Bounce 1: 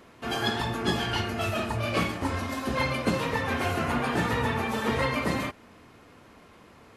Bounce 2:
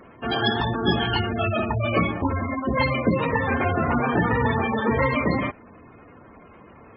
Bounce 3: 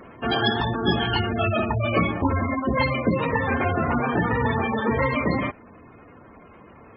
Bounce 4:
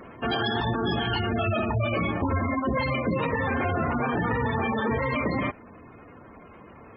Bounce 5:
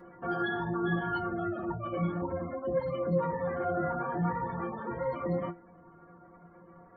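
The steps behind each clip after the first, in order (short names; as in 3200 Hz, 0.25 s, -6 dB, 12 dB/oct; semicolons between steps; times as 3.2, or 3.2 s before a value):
spectral gate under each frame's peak -15 dB strong; gain +6 dB
vocal rider 0.5 s
limiter -17.5 dBFS, peak gain reduction 9 dB
polynomial smoothing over 41 samples; metallic resonator 170 Hz, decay 0.24 s, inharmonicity 0.008; gain +5 dB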